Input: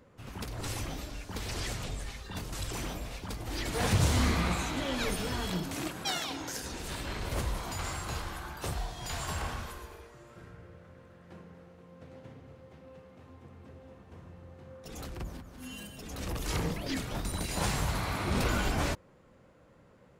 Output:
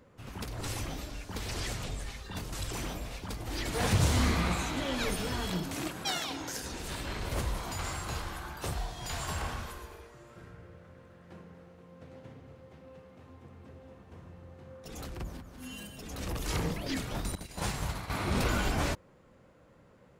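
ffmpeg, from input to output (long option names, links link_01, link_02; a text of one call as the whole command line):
ffmpeg -i in.wav -filter_complex "[0:a]asettb=1/sr,asplit=3[link_01][link_02][link_03];[link_01]atrim=end=17.354[link_04];[link_02]atrim=start=17.35:end=18.1,asetpts=PTS-STARTPTS,afade=type=in:duration=0.004:curve=qsin,afade=type=out:start_time=0.746:duration=0.004:curve=qsin,agate=range=-33dB:threshold=-27dB:ratio=3:release=100:detection=peak[link_05];[link_03]atrim=start=18.096[link_06];[link_04][link_05]acrossfade=duration=0.004:curve1=hsin:curve2=qsin[link_07];[link_07][link_06]acrossfade=duration=0.004:curve1=qsin:curve2=hsin" out.wav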